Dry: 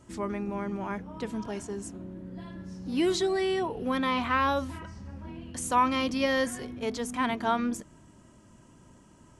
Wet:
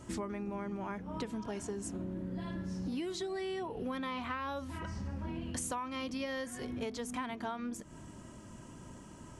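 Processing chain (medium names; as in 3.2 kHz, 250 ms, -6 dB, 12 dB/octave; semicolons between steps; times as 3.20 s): compression 16:1, threshold -40 dBFS, peak gain reduction 22 dB; trim +5 dB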